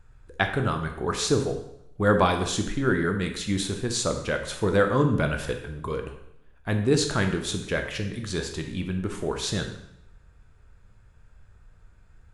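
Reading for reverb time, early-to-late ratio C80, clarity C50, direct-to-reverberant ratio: 0.75 s, 10.5 dB, 7.5 dB, 4.5 dB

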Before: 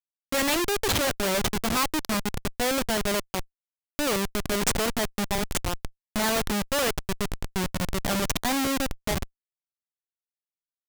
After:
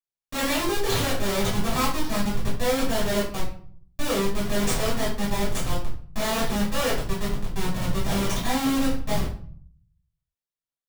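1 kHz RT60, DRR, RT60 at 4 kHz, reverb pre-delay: 0.50 s, −9.5 dB, 0.35 s, 3 ms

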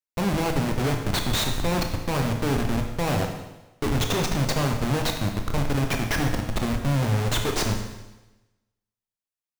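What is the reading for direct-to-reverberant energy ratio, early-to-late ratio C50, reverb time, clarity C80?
3.5 dB, 5.5 dB, 1.1 s, 8.0 dB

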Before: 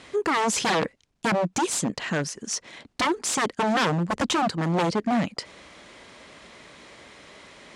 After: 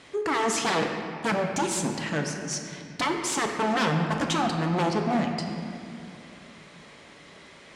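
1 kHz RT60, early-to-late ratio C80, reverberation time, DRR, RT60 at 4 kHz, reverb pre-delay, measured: 2.4 s, 5.0 dB, 2.5 s, 2.0 dB, 1.7 s, 5 ms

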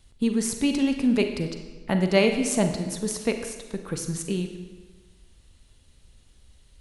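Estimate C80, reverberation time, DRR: 9.0 dB, 1.3 s, 6.0 dB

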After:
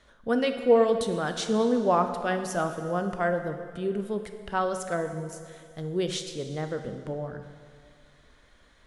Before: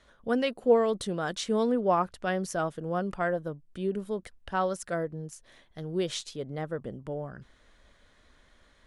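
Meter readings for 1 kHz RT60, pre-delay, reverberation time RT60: 2.1 s, 6 ms, 2.1 s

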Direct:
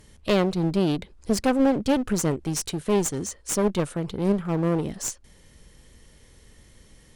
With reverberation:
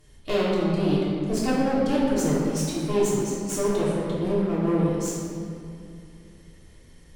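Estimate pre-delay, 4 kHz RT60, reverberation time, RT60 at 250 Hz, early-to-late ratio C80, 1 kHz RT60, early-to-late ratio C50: 3 ms, 1.5 s, 2.5 s, 3.0 s, 0.0 dB, 2.3 s, −1.5 dB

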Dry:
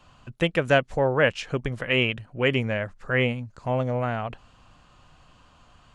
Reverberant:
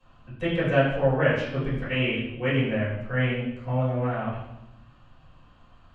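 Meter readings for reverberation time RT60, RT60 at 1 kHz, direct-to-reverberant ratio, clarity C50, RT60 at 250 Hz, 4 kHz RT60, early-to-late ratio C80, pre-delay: 0.85 s, 0.80 s, −12.5 dB, 2.0 dB, 1.3 s, 0.80 s, 5.0 dB, 4 ms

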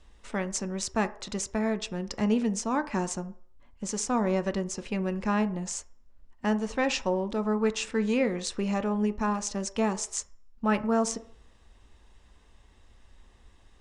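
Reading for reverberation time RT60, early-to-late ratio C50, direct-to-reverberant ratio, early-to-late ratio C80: 0.60 s, 17.0 dB, 10.0 dB, 20.5 dB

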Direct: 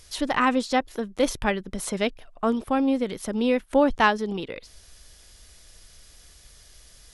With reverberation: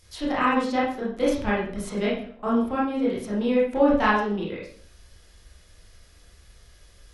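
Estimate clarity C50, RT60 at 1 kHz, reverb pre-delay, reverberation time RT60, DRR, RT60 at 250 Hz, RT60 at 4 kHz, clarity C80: 2.0 dB, 0.45 s, 21 ms, 0.50 s, −7.5 dB, 0.65 s, 0.40 s, 7.5 dB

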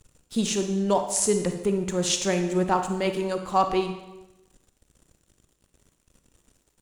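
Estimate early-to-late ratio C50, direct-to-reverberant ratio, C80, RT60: 7.5 dB, 6.5 dB, 10.0 dB, 0.95 s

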